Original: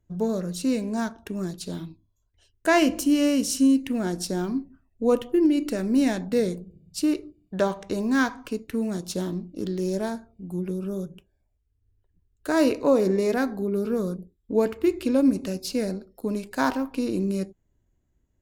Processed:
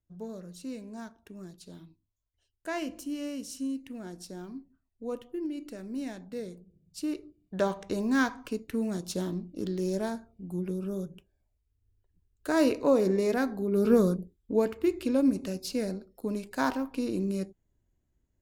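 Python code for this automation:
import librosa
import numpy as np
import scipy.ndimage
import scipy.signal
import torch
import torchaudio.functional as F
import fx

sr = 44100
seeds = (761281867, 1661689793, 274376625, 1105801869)

y = fx.gain(x, sr, db=fx.line((6.53, -14.5), (7.7, -3.5), (13.66, -3.5), (13.92, 5.0), (14.66, -4.5)))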